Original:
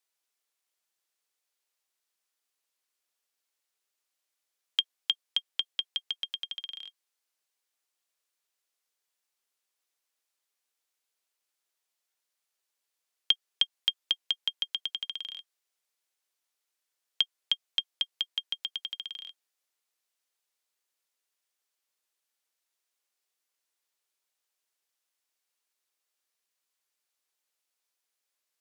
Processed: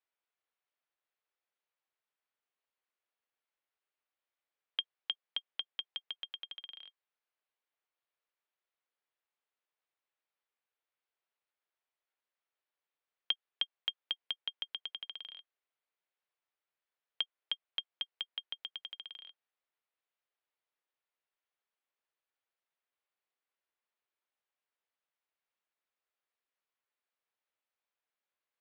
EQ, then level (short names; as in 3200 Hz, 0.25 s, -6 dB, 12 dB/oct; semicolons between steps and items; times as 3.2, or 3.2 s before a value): Gaussian blur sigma 1.6 samples; HPF 340 Hz; air absorption 250 m; -1.0 dB